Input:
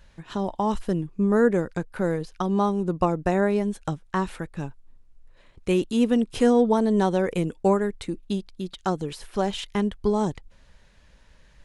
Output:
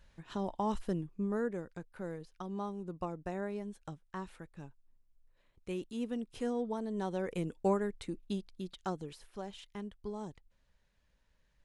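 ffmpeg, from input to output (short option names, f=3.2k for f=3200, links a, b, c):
-af "volume=-2dB,afade=t=out:st=0.88:d=0.61:silence=0.421697,afade=t=in:st=6.93:d=0.63:silence=0.446684,afade=t=out:st=8.61:d=0.81:silence=0.354813"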